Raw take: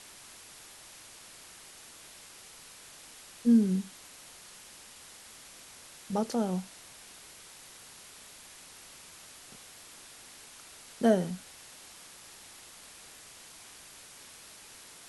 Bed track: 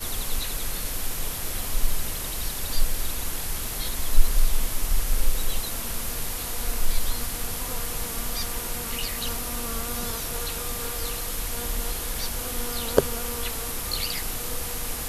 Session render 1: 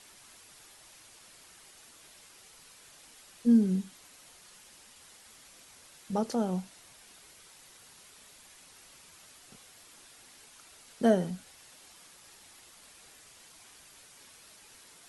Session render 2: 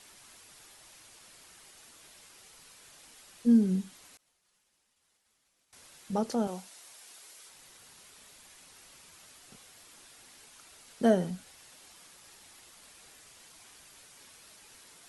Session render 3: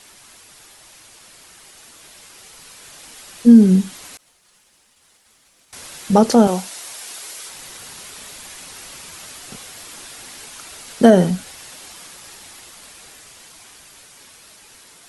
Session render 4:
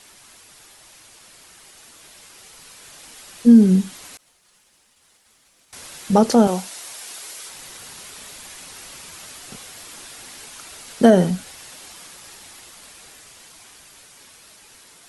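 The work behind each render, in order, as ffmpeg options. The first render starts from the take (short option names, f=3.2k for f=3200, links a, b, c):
-af "afftdn=nr=6:nf=-52"
-filter_complex "[0:a]asettb=1/sr,asplit=3[a][b][c];[a]atrim=end=4.174[d];[b]atrim=start=4.17:end=5.73,asetpts=PTS-STARTPTS,afade=t=in:d=0.004:c=qsin,afade=t=out:st=1.556:d=0.004:c=qsin,agate=range=-33dB:threshold=-44dB:ratio=3:release=100:detection=peak[e];[c]atrim=start=5.726[f];[d][e]acrossfade=d=0.004:c1=hsin:c2=qsin[g];[g][f]acrossfade=d=0.004:c1=qsin:c2=hsin,asettb=1/sr,asplit=3[h][i][j];[h]atrim=end=6.474[k];[i]atrim=start=6.47:end=7.49,asetpts=PTS-STARTPTS,afade=t=in:d=0.004:c=qsin,afade=t=out:st=1.016:d=0.004:c=qsin,bass=f=250:g=-15,treble=f=4k:g=4[l];[j]atrim=start=7.486[m];[k][l]acrossfade=d=0.004:c1=hsin:c2=qsin[n];[n][m]acrossfade=d=0.004:c1=qsin:c2=hsin"
-af "dynaudnorm=f=510:g=13:m=9.5dB,alimiter=level_in=9dB:limit=-1dB:release=50:level=0:latency=1"
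-af "volume=-2dB"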